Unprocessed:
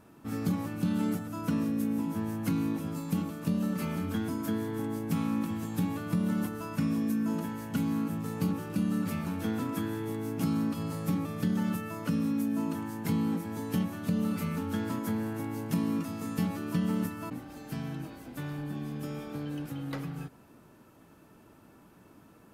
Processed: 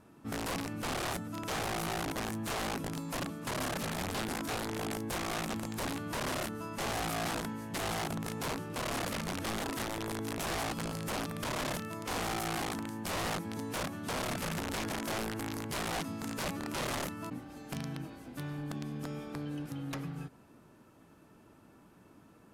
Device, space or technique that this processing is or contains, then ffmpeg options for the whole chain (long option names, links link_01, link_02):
overflowing digital effects unit: -af "aeval=exprs='(mod(23.7*val(0)+1,2)-1)/23.7':channel_layout=same,lowpass=12000,volume=-2.5dB"